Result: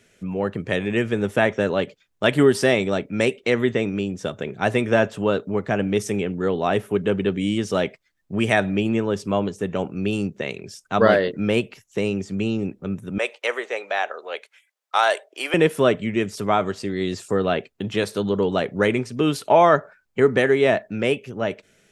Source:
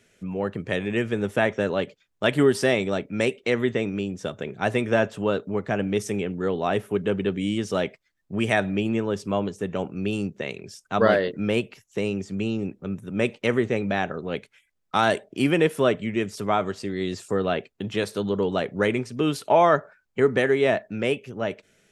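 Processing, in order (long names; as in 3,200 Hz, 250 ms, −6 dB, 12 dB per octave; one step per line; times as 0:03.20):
0:13.18–0:15.54: high-pass filter 530 Hz 24 dB per octave
level +3 dB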